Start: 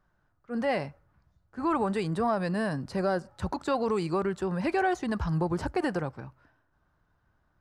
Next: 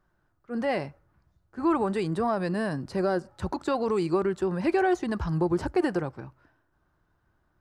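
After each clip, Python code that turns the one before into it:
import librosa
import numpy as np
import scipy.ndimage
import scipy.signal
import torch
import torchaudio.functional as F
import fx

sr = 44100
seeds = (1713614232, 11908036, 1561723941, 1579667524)

y = fx.peak_eq(x, sr, hz=350.0, db=6.5, octaves=0.36)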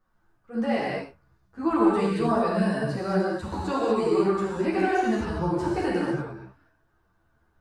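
y = fx.rev_gated(x, sr, seeds[0], gate_ms=260, shape='flat', drr_db=-4.5)
y = fx.ensemble(y, sr)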